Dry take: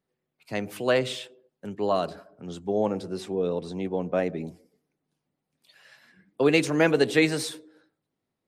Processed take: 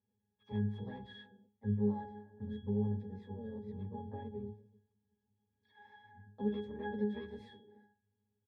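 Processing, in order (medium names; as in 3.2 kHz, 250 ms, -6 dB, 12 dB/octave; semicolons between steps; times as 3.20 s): compression 3:1, threshold -41 dBFS, peak gain reduction 18.5 dB; harmony voices -12 st 0 dB, +4 st -3 dB; pitch-class resonator G#, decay 0.38 s; trim +9.5 dB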